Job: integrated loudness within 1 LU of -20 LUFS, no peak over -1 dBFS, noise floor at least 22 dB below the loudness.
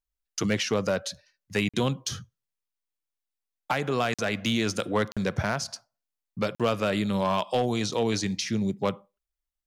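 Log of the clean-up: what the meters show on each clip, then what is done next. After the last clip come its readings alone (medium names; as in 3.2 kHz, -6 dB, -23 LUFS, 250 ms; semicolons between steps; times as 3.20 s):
clipped samples 0.3%; clipping level -16.5 dBFS; dropouts 4; longest dropout 46 ms; loudness -28.0 LUFS; peak level -16.5 dBFS; loudness target -20.0 LUFS
-> clip repair -16.5 dBFS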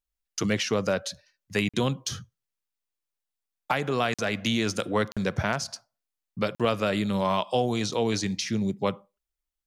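clipped samples 0.0%; dropouts 4; longest dropout 46 ms
-> interpolate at 1.69/4.14/5.12/6.55 s, 46 ms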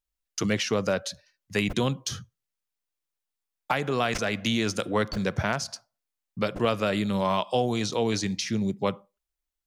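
dropouts 0; loudness -27.5 LUFS; peak level -10.5 dBFS; loudness target -20.0 LUFS
-> trim +7.5 dB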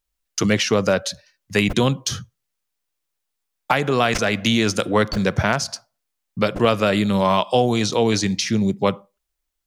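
loudness -20.0 LUFS; peak level -3.0 dBFS; noise floor -79 dBFS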